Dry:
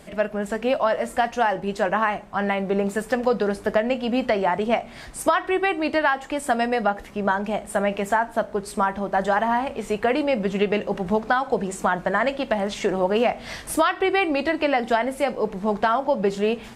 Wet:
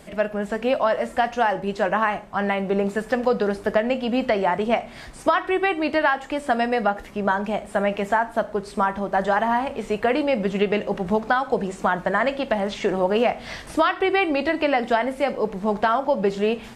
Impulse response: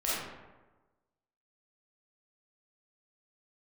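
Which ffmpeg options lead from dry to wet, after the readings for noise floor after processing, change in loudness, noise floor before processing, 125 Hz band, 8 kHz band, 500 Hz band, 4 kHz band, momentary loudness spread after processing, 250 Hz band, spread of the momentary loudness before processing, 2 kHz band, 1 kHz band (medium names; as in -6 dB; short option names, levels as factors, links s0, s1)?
-41 dBFS, +0.5 dB, -41 dBFS, +0.5 dB, no reading, +0.5 dB, 0.0 dB, 4 LU, +0.5 dB, 5 LU, +0.5 dB, +0.5 dB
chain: -filter_complex "[0:a]acrossover=split=5600[s0][s1];[s1]acompressor=threshold=0.00282:ratio=4:attack=1:release=60[s2];[s0][s2]amix=inputs=2:normalize=0,asplit=2[s3][s4];[1:a]atrim=start_sample=2205,afade=t=out:st=0.15:d=0.01,atrim=end_sample=7056,asetrate=39249,aresample=44100[s5];[s4][s5]afir=irnorm=-1:irlink=0,volume=0.0531[s6];[s3][s6]amix=inputs=2:normalize=0"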